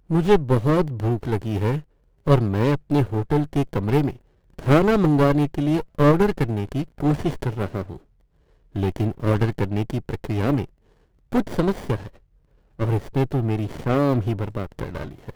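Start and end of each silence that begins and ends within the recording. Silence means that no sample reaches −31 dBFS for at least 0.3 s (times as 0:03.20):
0:01.80–0:02.27
0:04.11–0:04.59
0:07.96–0:08.75
0:10.65–0:11.32
0:12.07–0:12.79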